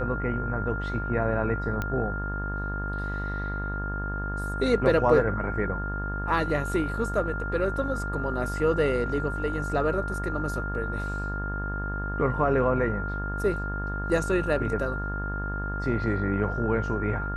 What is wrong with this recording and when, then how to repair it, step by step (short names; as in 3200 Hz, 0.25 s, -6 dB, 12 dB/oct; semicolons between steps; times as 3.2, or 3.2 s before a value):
buzz 50 Hz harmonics 36 -32 dBFS
tone 1400 Hz -33 dBFS
1.82 pop -16 dBFS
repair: de-click; notch 1400 Hz, Q 30; de-hum 50 Hz, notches 36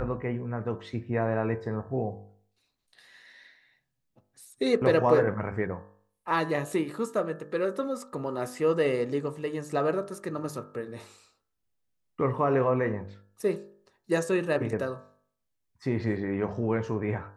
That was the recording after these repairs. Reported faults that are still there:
none